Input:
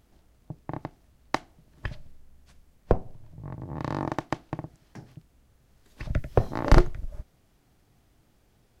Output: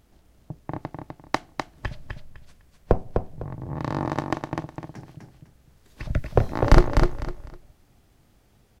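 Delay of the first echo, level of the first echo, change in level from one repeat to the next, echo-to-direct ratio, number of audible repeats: 252 ms, −5.0 dB, −12.5 dB, −4.5 dB, 3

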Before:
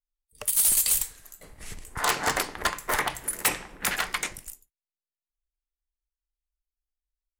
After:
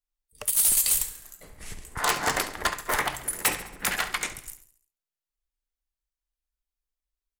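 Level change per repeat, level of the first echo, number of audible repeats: −5.5 dB, −14.0 dB, 4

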